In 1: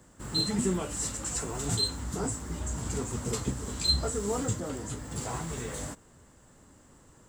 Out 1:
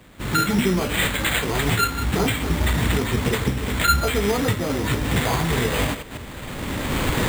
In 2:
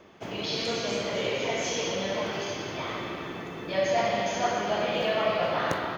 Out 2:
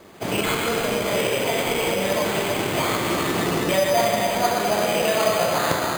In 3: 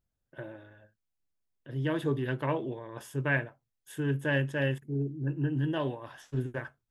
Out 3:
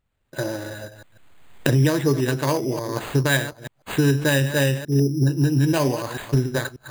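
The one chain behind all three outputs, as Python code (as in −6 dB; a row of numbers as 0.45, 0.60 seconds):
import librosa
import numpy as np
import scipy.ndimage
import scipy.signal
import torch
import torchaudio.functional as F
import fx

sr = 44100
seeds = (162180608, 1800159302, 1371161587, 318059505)

y = fx.reverse_delay(x, sr, ms=147, wet_db=-13.0)
y = fx.recorder_agc(y, sr, target_db=-18.5, rise_db_per_s=18.0, max_gain_db=30)
y = np.repeat(y[::8], 8)[:len(y)]
y = y * 10.0 ** (-22 / 20.0) / np.sqrt(np.mean(np.square(y)))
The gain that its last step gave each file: +7.5, +5.5, +7.5 decibels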